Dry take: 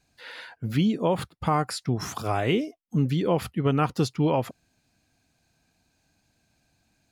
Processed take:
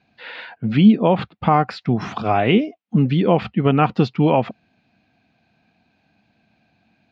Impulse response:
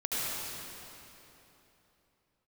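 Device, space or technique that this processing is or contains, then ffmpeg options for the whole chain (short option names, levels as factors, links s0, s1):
guitar cabinet: -af "highpass=100,equalizer=f=210:t=q:w=4:g=8,equalizer=f=730:t=q:w=4:g=5,equalizer=f=2500:t=q:w=4:g=4,lowpass=f=3800:w=0.5412,lowpass=f=3800:w=1.3066,volume=2"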